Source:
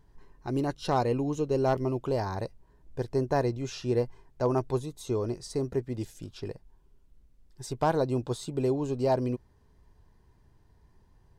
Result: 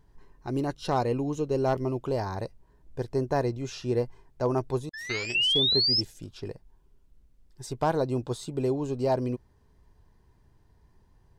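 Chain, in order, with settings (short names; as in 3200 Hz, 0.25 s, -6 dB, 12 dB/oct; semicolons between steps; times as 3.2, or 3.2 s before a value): 4.93–6.01 painted sound rise 1700–5400 Hz -24 dBFS; 4.89–5.35 power-law curve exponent 3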